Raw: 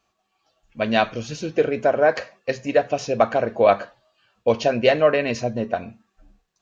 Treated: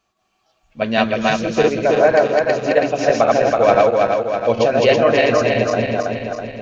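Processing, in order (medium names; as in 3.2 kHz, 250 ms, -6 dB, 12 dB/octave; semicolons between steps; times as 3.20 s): backward echo that repeats 163 ms, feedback 74%, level 0 dB; trim +1 dB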